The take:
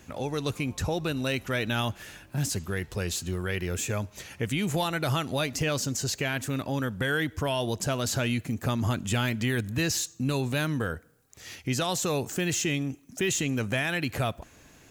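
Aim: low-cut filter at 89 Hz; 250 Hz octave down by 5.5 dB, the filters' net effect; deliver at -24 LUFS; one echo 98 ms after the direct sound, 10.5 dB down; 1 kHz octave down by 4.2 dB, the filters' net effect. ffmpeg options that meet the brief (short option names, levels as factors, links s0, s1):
-af "highpass=89,equalizer=f=250:t=o:g=-7,equalizer=f=1000:t=o:g=-5.5,aecho=1:1:98:0.299,volume=2.24"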